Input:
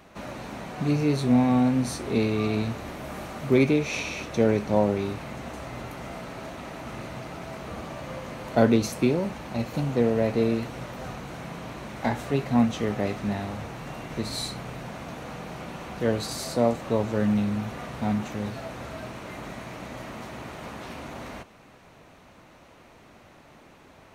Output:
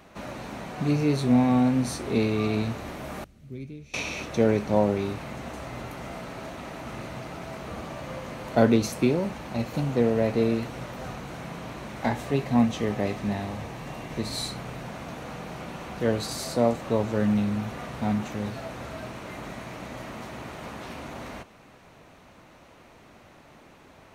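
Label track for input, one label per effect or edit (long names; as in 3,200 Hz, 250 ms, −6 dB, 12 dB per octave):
3.240000	3.940000	guitar amp tone stack bass-middle-treble 10-0-1
12.130000	14.370000	notch filter 1,400 Hz, Q 9.3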